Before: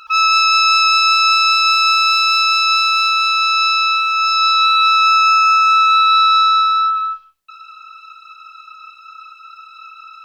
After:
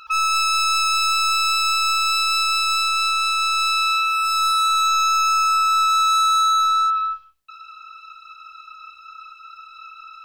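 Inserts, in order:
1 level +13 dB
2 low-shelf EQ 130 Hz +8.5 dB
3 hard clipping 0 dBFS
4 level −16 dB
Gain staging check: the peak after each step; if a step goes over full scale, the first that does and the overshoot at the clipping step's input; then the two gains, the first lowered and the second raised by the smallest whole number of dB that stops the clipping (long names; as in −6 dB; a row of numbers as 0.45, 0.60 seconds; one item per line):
+9.5, +9.5, 0.0, −16.0 dBFS
step 1, 9.5 dB
step 1 +3 dB, step 4 −6 dB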